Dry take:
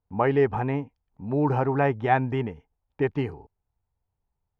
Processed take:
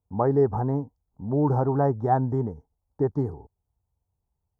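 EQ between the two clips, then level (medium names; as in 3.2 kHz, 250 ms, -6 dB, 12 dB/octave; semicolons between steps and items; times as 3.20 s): high-pass 57 Hz; Butterworth band-stop 2.6 kHz, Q 0.53; bass shelf 77 Hz +10 dB; 0.0 dB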